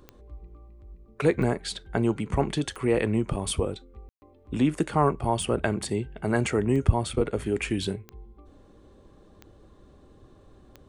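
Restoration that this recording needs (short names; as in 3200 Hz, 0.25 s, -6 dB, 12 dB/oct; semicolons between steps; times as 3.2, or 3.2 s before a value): de-click; room tone fill 4.09–4.22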